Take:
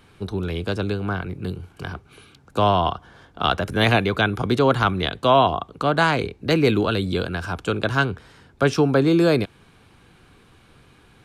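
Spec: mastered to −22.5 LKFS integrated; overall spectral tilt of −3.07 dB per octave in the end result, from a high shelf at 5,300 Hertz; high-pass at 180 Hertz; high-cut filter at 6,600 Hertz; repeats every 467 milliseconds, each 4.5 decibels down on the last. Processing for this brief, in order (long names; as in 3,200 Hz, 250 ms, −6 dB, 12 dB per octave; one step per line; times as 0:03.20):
high-pass filter 180 Hz
low-pass filter 6,600 Hz
high-shelf EQ 5,300 Hz +6.5 dB
repeating echo 467 ms, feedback 60%, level −4.5 dB
level −2 dB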